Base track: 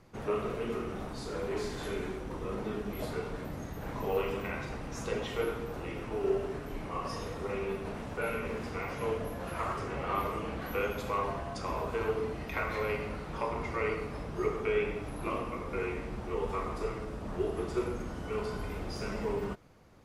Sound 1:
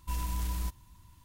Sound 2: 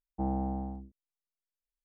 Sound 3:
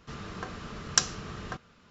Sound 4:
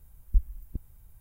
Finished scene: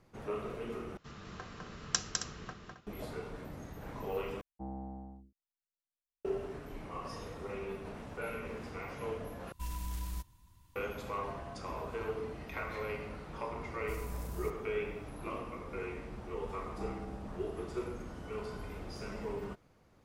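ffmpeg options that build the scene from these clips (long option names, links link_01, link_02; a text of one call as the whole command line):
ffmpeg -i bed.wav -i cue0.wav -i cue1.wav -i cue2.wav -filter_complex "[2:a]asplit=2[link_01][link_02];[1:a]asplit=2[link_03][link_04];[0:a]volume=-6dB[link_05];[3:a]aecho=1:1:204.1|268.2:0.631|0.282[link_06];[link_04]equalizer=frequency=2500:width_type=o:width=1.3:gain=-12[link_07];[link_05]asplit=4[link_08][link_09][link_10][link_11];[link_08]atrim=end=0.974[link_12];[link_06]atrim=end=1.9,asetpts=PTS-STARTPTS,volume=-8.5dB[link_13];[link_09]atrim=start=2.866:end=4.414[link_14];[link_01]atrim=end=1.84,asetpts=PTS-STARTPTS,volume=-11dB[link_15];[link_10]atrim=start=6.246:end=9.524[link_16];[link_03]atrim=end=1.24,asetpts=PTS-STARTPTS,volume=-6dB[link_17];[link_11]atrim=start=10.756[link_18];[link_07]atrim=end=1.24,asetpts=PTS-STARTPTS,volume=-8.5dB,afade=type=in:duration=0.004:curve=hsin,afade=type=out:start_time=1.236:duration=0.004:curve=hsin,adelay=608580S[link_19];[link_02]atrim=end=1.84,asetpts=PTS-STARTPTS,volume=-12.5dB,afade=type=in:duration=0.004:curve=hsin,afade=type=out:start_time=1.836:duration=0.004:curve=hsin,adelay=16590[link_20];[link_12][link_13]acrossfade=duration=0.004:curve1=hsin:curve2=hsin[link_21];[link_21][link_14]acrossfade=duration=0.004:curve1=hsin:curve2=hsin[link_22];[link_22][link_15]acrossfade=duration=0.004:curve1=hsin:curve2=hsin[link_23];[link_23][link_16]acrossfade=duration=0.004:curve1=hsin:curve2=hsin[link_24];[link_24][link_17]acrossfade=duration=0.004:curve1=hsin:curve2=hsin[link_25];[link_25][link_18]acrossfade=duration=0.004:curve1=hsin:curve2=hsin[link_26];[link_26][link_19][link_20]amix=inputs=3:normalize=0" out.wav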